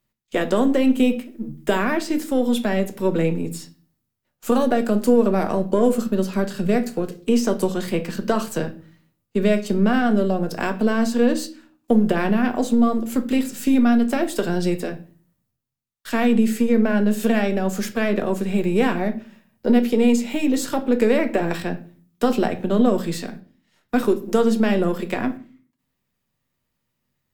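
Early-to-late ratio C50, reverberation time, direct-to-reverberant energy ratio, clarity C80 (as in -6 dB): 15.5 dB, 0.40 s, 7.0 dB, 21.0 dB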